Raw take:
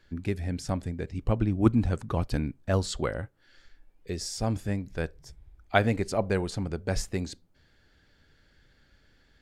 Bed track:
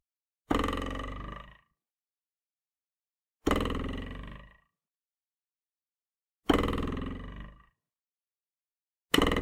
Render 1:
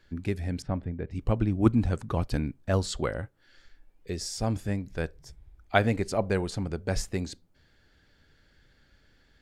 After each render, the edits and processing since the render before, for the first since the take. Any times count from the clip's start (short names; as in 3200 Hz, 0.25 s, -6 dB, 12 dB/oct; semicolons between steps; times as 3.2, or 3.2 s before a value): 0.62–1.11 air absorption 460 m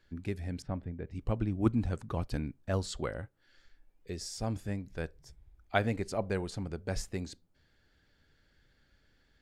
gain -6 dB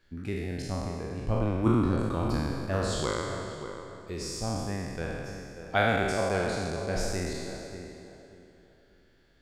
spectral trails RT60 2.05 s; tape echo 0.587 s, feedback 31%, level -8 dB, low-pass 1500 Hz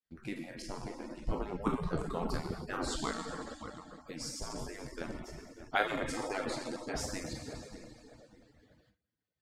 median-filter separation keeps percussive; gate with hold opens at -56 dBFS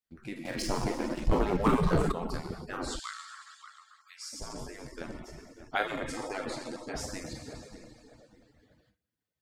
0.45–2.12 sample leveller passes 3; 2.99–4.33 elliptic high-pass 1200 Hz, stop band 70 dB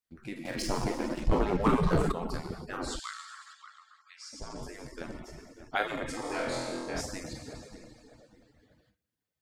1.23–1.91 high shelf 11000 Hz -8.5 dB; 3.53–4.63 air absorption 68 m; 6.22–7.01 flutter echo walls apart 4.1 m, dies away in 0.66 s